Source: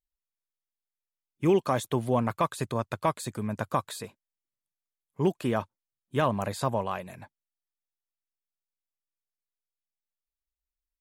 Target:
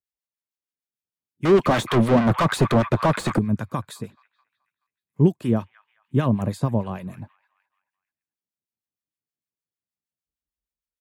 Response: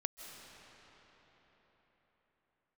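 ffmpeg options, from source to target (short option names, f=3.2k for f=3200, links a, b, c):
-filter_complex "[0:a]highpass=88,acrossover=split=320|1300|2900[a][b][c][d];[a]dynaudnorm=f=340:g=5:m=15dB[e];[c]aecho=1:1:214|428|642|856|1070:0.251|0.116|0.0532|0.0244|0.0112[f];[e][b][f][d]amix=inputs=4:normalize=0,asettb=1/sr,asplit=3[g][h][i];[g]atrim=end=1.454[j];[h]atrim=start=1.45:end=3.39,asetpts=PTS-STARTPTS,afade=t=in:d=0.004:c=qsin,afade=t=out:st=1.936:d=0.004:c=qsin,asplit=2[k][l];[l]highpass=f=720:p=1,volume=33dB,asoftclip=type=tanh:threshold=-7.5dB[m];[k][m]amix=inputs=2:normalize=0,lowpass=f=1.8k:p=1,volume=-6dB[n];[i]atrim=start=3.386[o];[j][n]acrossfade=d=0.004:c1=hsin:c2=qsin[p];[p][o]acrossfade=d=0.004:c1=qsin:c2=hsin,acrossover=split=930[q][r];[q]aeval=exprs='val(0)*(1-0.7/2+0.7/2*cos(2*PI*6.5*n/s))':c=same[s];[r]aeval=exprs='val(0)*(1-0.7/2-0.7/2*cos(2*PI*6.5*n/s))':c=same[t];[s][t]amix=inputs=2:normalize=0"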